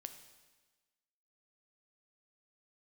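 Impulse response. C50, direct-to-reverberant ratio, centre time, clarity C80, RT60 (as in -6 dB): 9.5 dB, 8.0 dB, 15 ms, 11.0 dB, 1.3 s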